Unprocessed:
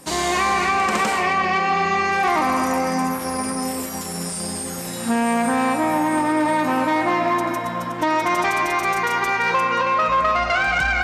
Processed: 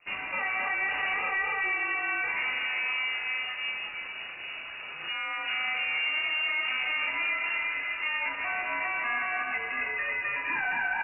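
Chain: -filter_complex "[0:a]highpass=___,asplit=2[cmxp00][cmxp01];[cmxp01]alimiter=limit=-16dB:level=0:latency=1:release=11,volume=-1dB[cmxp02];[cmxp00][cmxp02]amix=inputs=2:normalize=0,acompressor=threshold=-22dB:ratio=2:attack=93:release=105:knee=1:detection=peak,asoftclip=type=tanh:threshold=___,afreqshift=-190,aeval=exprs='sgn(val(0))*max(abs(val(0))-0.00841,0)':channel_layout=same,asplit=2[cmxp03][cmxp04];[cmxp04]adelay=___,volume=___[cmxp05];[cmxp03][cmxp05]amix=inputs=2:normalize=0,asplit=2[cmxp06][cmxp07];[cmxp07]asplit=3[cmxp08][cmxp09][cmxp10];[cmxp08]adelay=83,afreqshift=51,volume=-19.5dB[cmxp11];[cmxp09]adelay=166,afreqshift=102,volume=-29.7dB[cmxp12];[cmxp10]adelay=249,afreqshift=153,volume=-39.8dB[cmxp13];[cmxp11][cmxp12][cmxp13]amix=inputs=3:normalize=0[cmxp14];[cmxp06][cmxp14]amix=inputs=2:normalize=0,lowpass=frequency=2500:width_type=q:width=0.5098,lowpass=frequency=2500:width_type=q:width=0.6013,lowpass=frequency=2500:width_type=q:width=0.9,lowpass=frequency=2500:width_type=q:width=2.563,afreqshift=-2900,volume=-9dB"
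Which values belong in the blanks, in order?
230, -17.5dB, 34, -3dB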